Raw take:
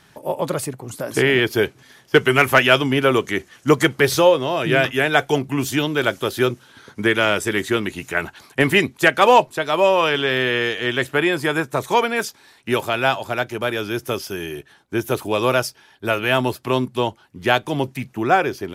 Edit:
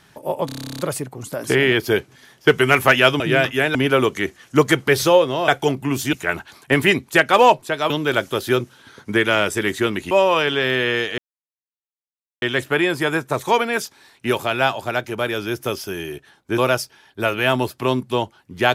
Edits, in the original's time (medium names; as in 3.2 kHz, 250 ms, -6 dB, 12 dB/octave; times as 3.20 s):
0.46 s: stutter 0.03 s, 12 plays
4.60–5.15 s: move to 2.87 s
8.01–9.78 s: move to 5.80 s
10.85 s: insert silence 1.24 s
15.01–15.43 s: delete